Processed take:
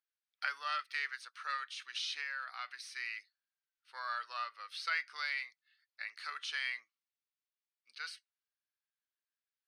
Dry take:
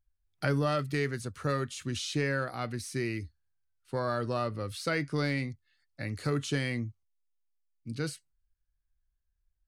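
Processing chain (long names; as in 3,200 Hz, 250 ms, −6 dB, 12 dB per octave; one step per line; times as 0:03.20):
high-pass filter 1,200 Hz 24 dB per octave
0:02.17–0:02.66: downward compressor 5 to 1, threshold −37 dBFS, peak gain reduction 6 dB
Savitzky-Golay smoothing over 15 samples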